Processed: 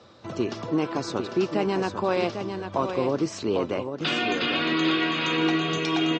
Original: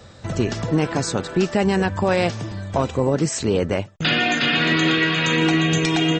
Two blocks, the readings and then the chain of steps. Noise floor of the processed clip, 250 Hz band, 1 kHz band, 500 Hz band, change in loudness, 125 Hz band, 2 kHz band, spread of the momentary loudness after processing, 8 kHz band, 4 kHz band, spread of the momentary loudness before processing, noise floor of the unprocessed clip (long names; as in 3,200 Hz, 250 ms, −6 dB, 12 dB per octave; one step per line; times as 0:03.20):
−41 dBFS, −5.0 dB, −3.5 dB, −4.0 dB, −5.5 dB, −11.5 dB, −7.5 dB, 7 LU, −12.5 dB, −5.5 dB, 7 LU, −43 dBFS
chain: loudspeaker in its box 160–5,700 Hz, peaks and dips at 170 Hz −5 dB, 340 Hz +5 dB, 1,100 Hz +6 dB, 1,800 Hz −6 dB
single-tap delay 799 ms −7.5 dB
level −6 dB